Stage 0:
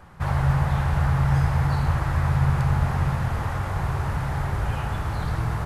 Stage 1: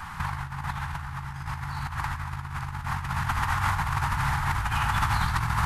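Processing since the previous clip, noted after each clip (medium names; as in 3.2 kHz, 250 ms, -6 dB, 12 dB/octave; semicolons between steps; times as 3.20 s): FFT filter 100 Hz 0 dB, 240 Hz -3 dB, 520 Hz -18 dB, 900 Hz +8 dB; compressor with a negative ratio -27 dBFS, ratio -0.5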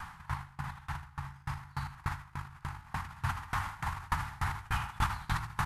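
on a send: delay 79 ms -3.5 dB; on the sum: sawtooth tremolo in dB decaying 3.4 Hz, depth 26 dB; trim -2.5 dB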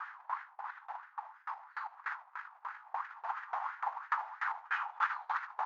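wah-wah 3 Hz 680–1700 Hz, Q 3.1; brick-wall FIR band-pass 420–7100 Hz; trim +5.5 dB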